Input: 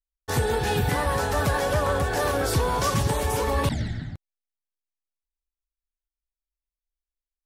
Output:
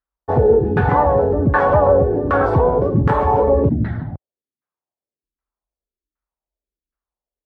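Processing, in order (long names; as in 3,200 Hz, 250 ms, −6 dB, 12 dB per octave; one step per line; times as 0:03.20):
high-pass filter 59 Hz
auto-filter low-pass saw down 1.3 Hz 260–1,500 Hz
level +7.5 dB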